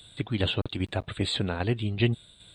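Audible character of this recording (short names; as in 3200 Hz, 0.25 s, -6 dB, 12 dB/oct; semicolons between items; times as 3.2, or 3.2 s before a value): tremolo saw down 2.5 Hz, depth 50%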